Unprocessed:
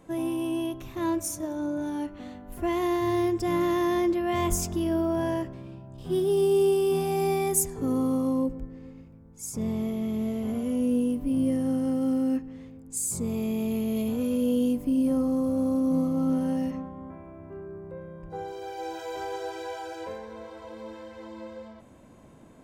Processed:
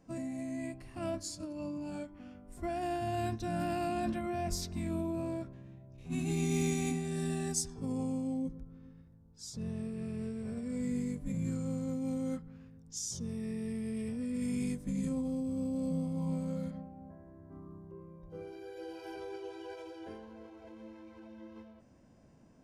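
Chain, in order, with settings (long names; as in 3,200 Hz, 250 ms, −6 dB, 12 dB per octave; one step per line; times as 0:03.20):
formants moved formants −5 semitones
every ending faded ahead of time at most 230 dB per second
level −9 dB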